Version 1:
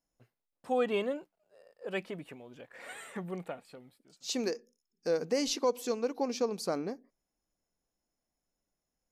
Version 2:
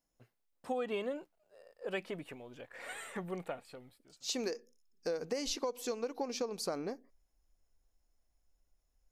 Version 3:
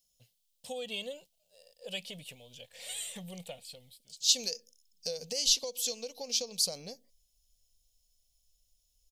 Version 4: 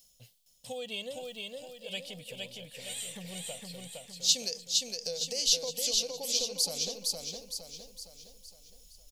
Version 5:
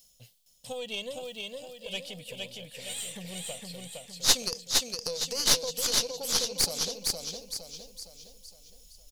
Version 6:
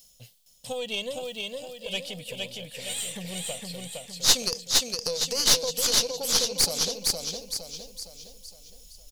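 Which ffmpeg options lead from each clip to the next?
ffmpeg -i in.wav -af "asubboost=boost=9:cutoff=61,acompressor=threshold=-33dB:ratio=10,volume=1dB" out.wav
ffmpeg -i in.wav -af "firequalizer=gain_entry='entry(180,0);entry(340,-20);entry(500,-2);entry(1300,-19);entry(3100,13)':delay=0.05:min_phase=1" out.wav
ffmpeg -i in.wav -af "areverse,acompressor=mode=upward:threshold=-45dB:ratio=2.5,areverse,aecho=1:1:462|924|1386|1848|2310|2772:0.708|0.326|0.15|0.0689|0.0317|0.0146" out.wav
ffmpeg -i in.wav -af "aeval=exprs='0.299*(cos(1*acos(clip(val(0)/0.299,-1,1)))-cos(1*PI/2))+0.0841*(cos(4*acos(clip(val(0)/0.299,-1,1)))-cos(4*PI/2))':channel_layout=same,volume=2dB" out.wav
ffmpeg -i in.wav -af "asoftclip=type=tanh:threshold=-10.5dB,volume=4.5dB" out.wav

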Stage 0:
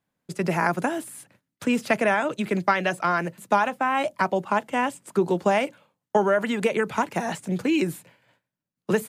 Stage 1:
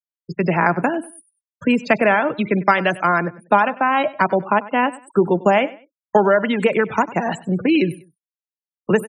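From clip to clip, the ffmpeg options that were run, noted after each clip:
ffmpeg -i in.wav -af "afftfilt=real='re*gte(hypot(re,im),0.0251)':imag='im*gte(hypot(re,im),0.0251)':win_size=1024:overlap=0.75,aecho=1:1:97|194:0.112|0.0303,volume=6dB" out.wav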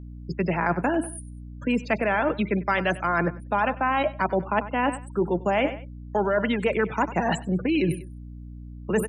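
ffmpeg -i in.wav -af "areverse,acompressor=threshold=-24dB:ratio=6,areverse,aeval=exprs='val(0)+0.00891*(sin(2*PI*60*n/s)+sin(2*PI*2*60*n/s)/2+sin(2*PI*3*60*n/s)/3+sin(2*PI*4*60*n/s)/4+sin(2*PI*5*60*n/s)/5)':channel_layout=same,volume=3dB" out.wav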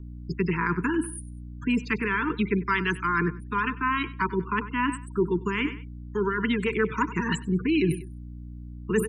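ffmpeg -i in.wav -af "asuperstop=centerf=650:order=20:qfactor=1.4" out.wav

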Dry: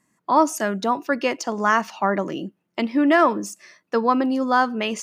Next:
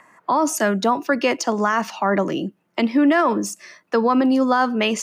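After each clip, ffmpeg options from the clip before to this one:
ffmpeg -i in.wav -filter_complex "[0:a]acrossover=split=270|490|2100[link_01][link_02][link_03][link_04];[link_03]acompressor=mode=upward:threshold=-42dB:ratio=2.5[link_05];[link_01][link_02][link_05][link_04]amix=inputs=4:normalize=0,alimiter=level_in=13.5dB:limit=-1dB:release=50:level=0:latency=1,volume=-8.5dB" out.wav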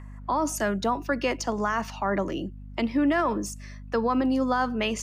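ffmpeg -i in.wav -af "aeval=exprs='val(0)+0.0224*(sin(2*PI*50*n/s)+sin(2*PI*2*50*n/s)/2+sin(2*PI*3*50*n/s)/3+sin(2*PI*4*50*n/s)/4+sin(2*PI*5*50*n/s)/5)':channel_layout=same,volume=-7dB" out.wav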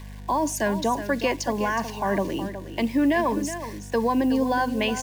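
ffmpeg -i in.wav -af "acrusher=bits=7:mix=0:aa=0.000001,asuperstop=centerf=1300:order=12:qfactor=4.6,aecho=1:1:368:0.282,volume=2dB" out.wav

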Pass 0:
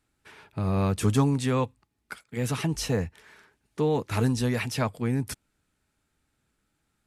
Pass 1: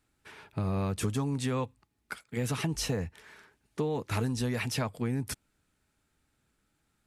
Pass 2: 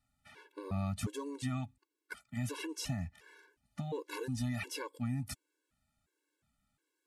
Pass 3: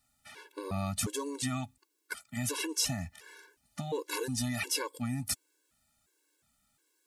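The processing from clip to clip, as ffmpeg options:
ffmpeg -i in.wav -af "acompressor=threshold=-27dB:ratio=6" out.wav
ffmpeg -i in.wav -af "afftfilt=real='re*gt(sin(2*PI*1.4*pts/sr)*(1-2*mod(floor(b*sr/1024/290),2)),0)':imag='im*gt(sin(2*PI*1.4*pts/sr)*(1-2*mod(floor(b*sr/1024/290),2)),0)':win_size=1024:overlap=0.75,volume=-3.5dB" out.wav
ffmpeg -i in.wav -af "bass=frequency=250:gain=-6,treble=frequency=4000:gain=8,volume=5.5dB" out.wav

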